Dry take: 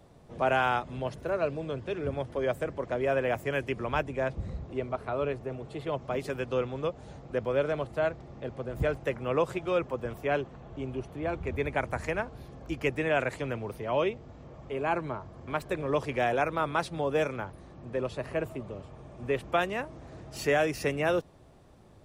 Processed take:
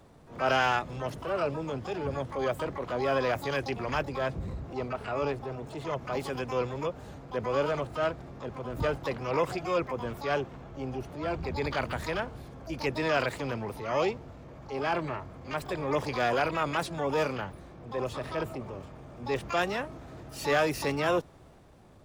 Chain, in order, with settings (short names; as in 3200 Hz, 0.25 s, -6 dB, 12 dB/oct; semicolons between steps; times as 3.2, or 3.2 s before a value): harmoniser +12 st -8 dB; transient shaper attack -4 dB, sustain +2 dB